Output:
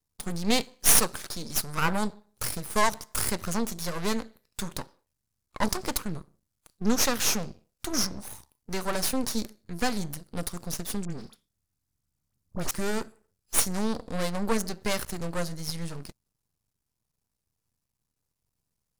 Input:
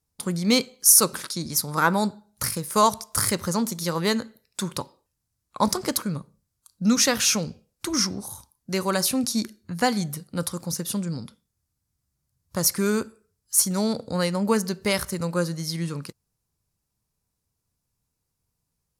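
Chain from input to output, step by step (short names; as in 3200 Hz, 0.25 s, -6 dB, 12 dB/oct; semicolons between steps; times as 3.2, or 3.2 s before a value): half-wave rectifier; 11.05–12.71 dispersion highs, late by 52 ms, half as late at 1500 Hz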